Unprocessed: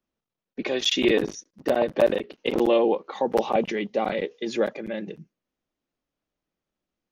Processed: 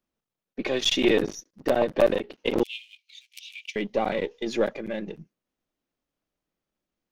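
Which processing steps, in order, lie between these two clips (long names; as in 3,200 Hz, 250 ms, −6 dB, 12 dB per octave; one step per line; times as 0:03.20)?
gain on one half-wave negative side −3 dB
0:02.63–0:03.76: Chebyshev high-pass filter 2,300 Hz, order 6
level +1 dB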